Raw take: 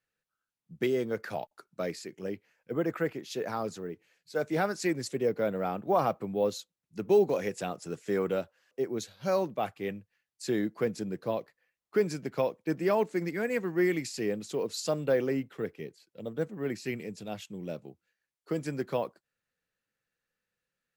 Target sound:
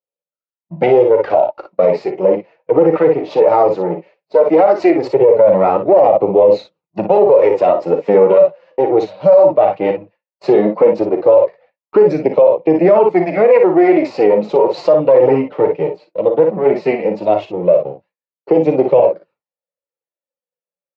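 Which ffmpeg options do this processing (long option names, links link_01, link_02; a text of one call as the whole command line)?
ffmpeg -i in.wav -filter_complex "[0:a]aeval=exprs='if(lt(val(0),0),0.447*val(0),val(0))':channel_layout=same,asplit=2[link_01][link_02];[link_02]acompressor=threshold=-45dB:ratio=6,volume=-3dB[link_03];[link_01][link_03]amix=inputs=2:normalize=0,highpass=150,equalizer=frequency=170:width_type=q:width=4:gain=5,equalizer=frequency=240:width_type=q:width=4:gain=-7,equalizer=frequency=570:width_type=q:width=4:gain=8,equalizer=frequency=920:width_type=q:width=4:gain=7,equalizer=frequency=1600:width_type=q:width=4:gain=-10,equalizer=frequency=3300:width_type=q:width=4:gain=-8,lowpass=frequency=3500:width=0.5412,lowpass=frequency=3500:width=1.3066,flanger=delay=0.3:depth=6.4:regen=-23:speed=0.16:shape=sinusoidal,equalizer=frequency=540:width=1:gain=10,aecho=1:1:38|57:0.251|0.398,flanger=delay=2.2:depth=1.8:regen=-60:speed=1.9:shape=triangular,agate=range=-33dB:threshold=-55dB:ratio=3:detection=peak,alimiter=level_in=23.5dB:limit=-1dB:release=50:level=0:latency=1,volume=-1dB" out.wav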